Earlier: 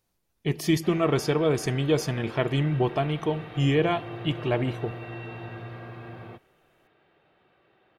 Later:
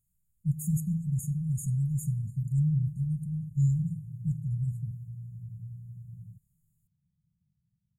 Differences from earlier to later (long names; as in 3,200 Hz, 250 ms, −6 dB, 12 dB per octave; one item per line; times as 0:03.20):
speech: send +6.5 dB
master: add linear-phase brick-wall band-stop 200–6,600 Hz